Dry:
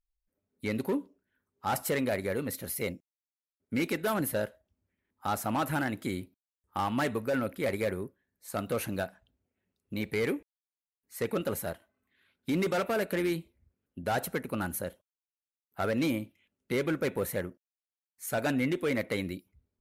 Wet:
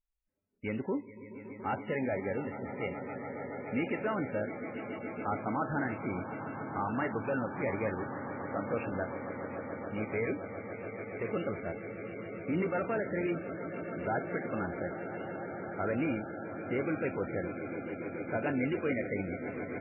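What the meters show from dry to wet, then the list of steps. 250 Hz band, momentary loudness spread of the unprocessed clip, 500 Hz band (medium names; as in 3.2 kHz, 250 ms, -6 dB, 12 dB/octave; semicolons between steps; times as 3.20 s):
-1.5 dB, 11 LU, -1.5 dB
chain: echo with a slow build-up 142 ms, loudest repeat 8, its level -14.5 dB; trim -3 dB; MP3 8 kbps 11.025 kHz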